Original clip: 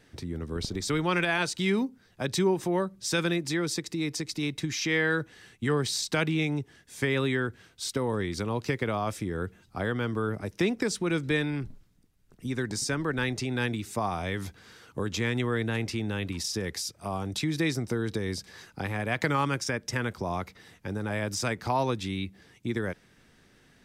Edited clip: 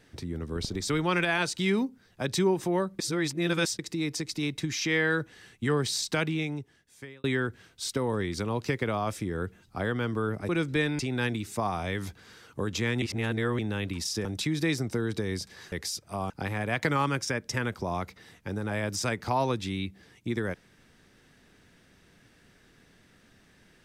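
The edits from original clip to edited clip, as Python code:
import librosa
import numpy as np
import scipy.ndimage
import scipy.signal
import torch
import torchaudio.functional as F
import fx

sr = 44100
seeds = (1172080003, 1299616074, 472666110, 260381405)

y = fx.edit(x, sr, fx.reverse_span(start_s=2.99, length_s=0.8),
    fx.fade_out_span(start_s=6.04, length_s=1.2),
    fx.cut(start_s=10.49, length_s=0.55),
    fx.cut(start_s=11.54, length_s=1.84),
    fx.reverse_span(start_s=15.41, length_s=0.57),
    fx.move(start_s=16.64, length_s=0.58, to_s=18.69), tone=tone)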